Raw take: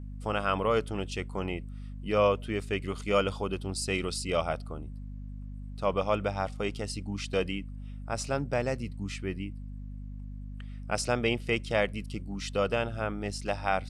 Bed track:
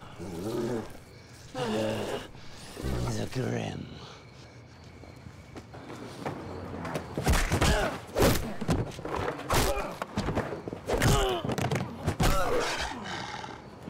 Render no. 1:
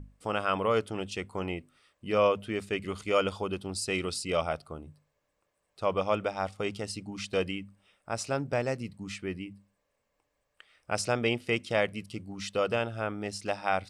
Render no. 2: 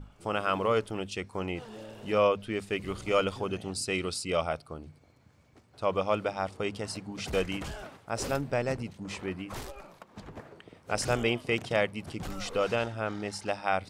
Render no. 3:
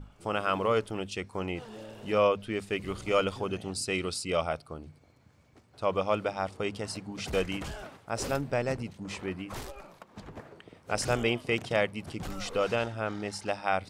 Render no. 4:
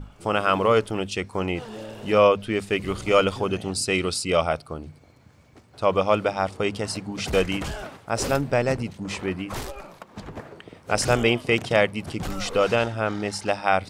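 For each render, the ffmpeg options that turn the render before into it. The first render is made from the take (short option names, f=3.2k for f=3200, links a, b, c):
-af "bandreject=f=50:t=h:w=6,bandreject=f=100:t=h:w=6,bandreject=f=150:t=h:w=6,bandreject=f=200:t=h:w=6,bandreject=f=250:t=h:w=6"
-filter_complex "[1:a]volume=-15dB[a];[0:a][a]amix=inputs=2:normalize=0"
-af anull
-af "volume=7.5dB"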